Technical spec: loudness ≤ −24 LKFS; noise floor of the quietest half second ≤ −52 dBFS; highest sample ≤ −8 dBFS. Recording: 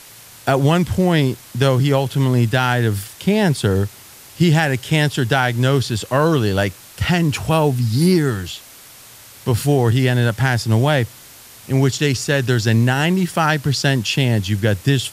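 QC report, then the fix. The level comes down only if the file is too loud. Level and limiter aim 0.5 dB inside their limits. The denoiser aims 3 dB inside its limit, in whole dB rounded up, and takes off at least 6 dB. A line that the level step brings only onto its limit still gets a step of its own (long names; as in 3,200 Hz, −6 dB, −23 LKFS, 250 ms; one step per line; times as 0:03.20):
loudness −17.5 LKFS: out of spec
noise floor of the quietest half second −42 dBFS: out of spec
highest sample −3.0 dBFS: out of spec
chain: broadband denoise 6 dB, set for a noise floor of −42 dBFS
level −7 dB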